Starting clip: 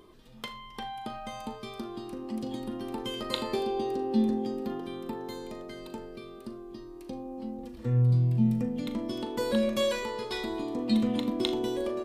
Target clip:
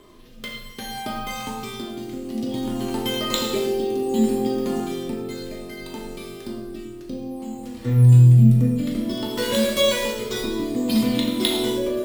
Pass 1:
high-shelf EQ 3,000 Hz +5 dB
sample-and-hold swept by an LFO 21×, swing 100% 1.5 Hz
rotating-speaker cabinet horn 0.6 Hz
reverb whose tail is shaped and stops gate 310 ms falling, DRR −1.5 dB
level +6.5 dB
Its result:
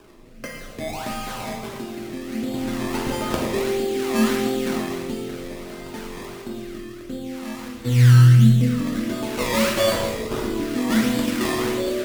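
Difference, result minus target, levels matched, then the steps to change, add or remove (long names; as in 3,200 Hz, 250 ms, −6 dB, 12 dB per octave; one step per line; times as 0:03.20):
sample-and-hold swept by an LFO: distortion +10 dB
change: sample-and-hold swept by an LFO 4×, swing 100% 1.5 Hz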